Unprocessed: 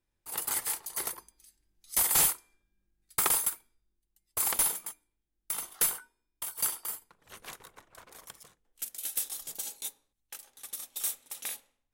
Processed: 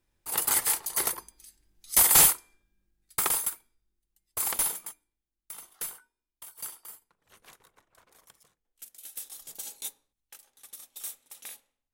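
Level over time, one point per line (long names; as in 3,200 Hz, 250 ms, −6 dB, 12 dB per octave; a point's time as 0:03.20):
0:02.17 +6.5 dB
0:03.31 −0.5 dB
0:04.87 −0.5 dB
0:05.53 −9 dB
0:09.08 −9 dB
0:09.86 +1 dB
0:10.38 −6 dB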